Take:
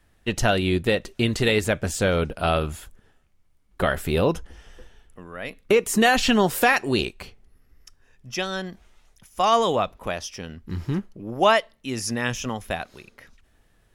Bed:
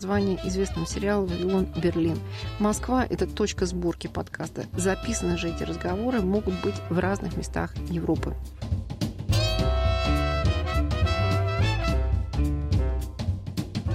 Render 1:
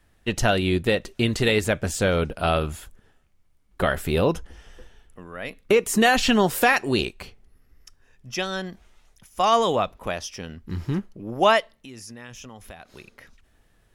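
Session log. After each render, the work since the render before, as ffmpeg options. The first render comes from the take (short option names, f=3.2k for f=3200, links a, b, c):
-filter_complex "[0:a]asettb=1/sr,asplit=3[a][b][c];[a]atrim=end=11.724[d];[b]atrim=start=11.72:end=12.95,asetpts=PTS-STARTPTS,afade=t=in:d=0.004:c=qsin,afade=t=out:st=1.226:d=0.004:c=qsin,acompressor=threshold=-40dB:ratio=4:attack=3.2:release=140:knee=1:detection=peak[e];[c]atrim=start=12.946[f];[d][e]acrossfade=d=0.004:c1=hsin:c2=qsin[g];[g][f]acrossfade=d=0.004:c1=qsin:c2=hsin"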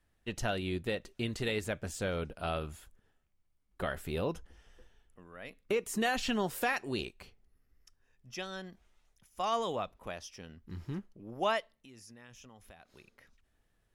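-af "volume=-13dB"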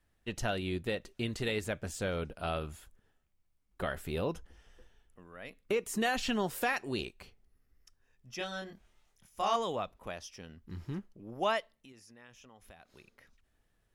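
-filter_complex "[0:a]asettb=1/sr,asplit=3[a][b][c];[a]atrim=end=8.384[d];[b]atrim=start=8.38:end=9.56,asetpts=PTS-STARTPTS,afade=t=in:d=0.004:c=qsin,afade=t=out:st=1.176:d=0.004:c=qsin,asplit=2[e][f];[f]adelay=25,volume=-2dB[g];[e][g]amix=inputs=2:normalize=0,atrim=end_sample=52038[h];[c]atrim=start=9.556[i];[d][h]acrossfade=d=0.004:c1=hsin:c2=qsin[j];[j][i]acrossfade=d=0.004:c1=qsin:c2=hsin,asettb=1/sr,asplit=3[k][l][m];[k]atrim=end=11.924[n];[l]atrim=start=11.92:end=12.62,asetpts=PTS-STARTPTS,afade=t=in:d=0.004:c=qsin,afade=t=out:st=0.696:d=0.004:c=qsin,bass=f=250:g=-6,treble=f=4k:g=-5[o];[m]atrim=start=12.616[p];[n][o]acrossfade=d=0.004:c1=hsin:c2=qsin[q];[q][p]acrossfade=d=0.004:c1=qsin:c2=hsin"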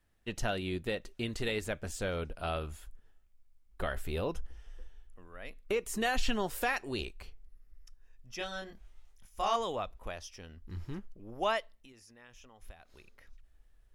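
-af "asubboost=boost=7:cutoff=53"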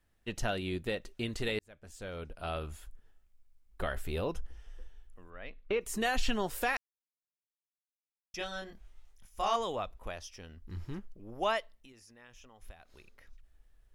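-filter_complex "[0:a]asettb=1/sr,asplit=3[a][b][c];[a]atrim=end=5.304[d];[b]atrim=start=5.3:end=5.81,asetpts=PTS-STARTPTS,afade=t=in:d=0.004:c=qsin,afade=t=out:st=0.506:d=0.004:c=qsin,lowpass=f=4k:w=0.5412,lowpass=f=4k:w=1.3066[e];[c]atrim=start=5.806[f];[d][e]acrossfade=d=0.004:c1=hsin:c2=qsin[g];[g][f]acrossfade=d=0.004:c1=qsin:c2=hsin,asplit=4[h][i][j][k];[h]atrim=end=1.59,asetpts=PTS-STARTPTS,afade=t=out:st=1.586:d=0.004:c=hsin[l];[i]atrim=start=1.59:end=6.77,asetpts=PTS-STARTPTS,afade=t=in:d=1.16,afade=t=out:st=5.176:d=0.004:c=hsin[m];[j]atrim=start=6.77:end=8.34,asetpts=PTS-STARTPTS,volume=0[n];[k]atrim=start=8.34,asetpts=PTS-STARTPTS,afade=t=in:d=0.004:c=hsin[o];[l][m][n][o]concat=n=4:v=0:a=1"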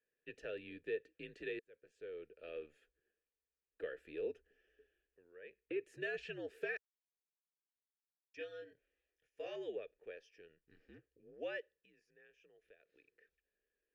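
-filter_complex "[0:a]asplit=3[a][b][c];[a]bandpass=f=530:t=q:w=8,volume=0dB[d];[b]bandpass=f=1.84k:t=q:w=8,volume=-6dB[e];[c]bandpass=f=2.48k:t=q:w=8,volume=-9dB[f];[d][e][f]amix=inputs=3:normalize=0,afreqshift=-75"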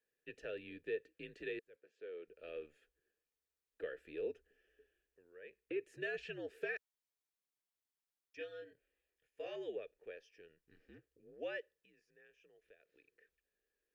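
-filter_complex "[0:a]asettb=1/sr,asplit=3[a][b][c];[a]atrim=end=1.764[d];[b]atrim=start=1.76:end=2.28,asetpts=PTS-STARTPTS,afade=t=in:d=0.004:c=qsin,afade=t=out:st=0.516:d=0.004:c=qsin,highpass=240,lowpass=4.8k[e];[c]atrim=start=2.276[f];[d][e]acrossfade=d=0.004:c1=hsin:c2=qsin[g];[g][f]acrossfade=d=0.004:c1=qsin:c2=hsin,asettb=1/sr,asplit=3[h][i][j];[h]atrim=end=8.464[k];[i]atrim=start=8.46:end=9.58,asetpts=PTS-STARTPTS,afade=t=in:d=0.004:c=qsin,afade=t=out:st=1.116:d=0.004:c=qsin,bandreject=f=5.7k:w=7.5[l];[j]atrim=start=9.576[m];[k][l]acrossfade=d=0.004:c1=hsin:c2=qsin[n];[n][m]acrossfade=d=0.004:c1=qsin:c2=hsin"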